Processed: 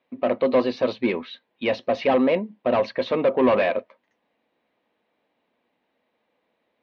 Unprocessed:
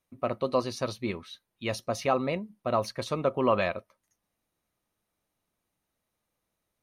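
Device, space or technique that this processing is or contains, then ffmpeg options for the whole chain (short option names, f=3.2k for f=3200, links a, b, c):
overdrive pedal into a guitar cabinet: -filter_complex "[0:a]asplit=2[a][b];[b]highpass=f=720:p=1,volume=22dB,asoftclip=type=tanh:threshold=-11.5dB[c];[a][c]amix=inputs=2:normalize=0,lowpass=f=2k:p=1,volume=-6dB,highpass=79,equalizer=f=98:t=q:w=4:g=-6,equalizer=f=140:t=q:w=4:g=-5,equalizer=f=250:t=q:w=4:g=8,equalizer=f=480:t=q:w=4:g=5,equalizer=f=1.3k:t=q:w=4:g=-9,lowpass=f=3.7k:w=0.5412,lowpass=f=3.7k:w=1.3066"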